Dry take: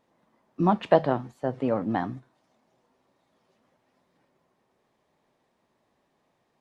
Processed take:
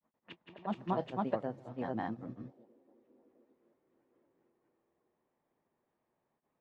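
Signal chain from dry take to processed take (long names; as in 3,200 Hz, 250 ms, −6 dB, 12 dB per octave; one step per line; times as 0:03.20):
feedback echo with a band-pass in the loop 224 ms, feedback 82%, band-pass 380 Hz, level −22 dB
granular cloud 126 ms, spray 533 ms
low-pass that shuts in the quiet parts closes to 2,200 Hz, open at −26 dBFS
level −8.5 dB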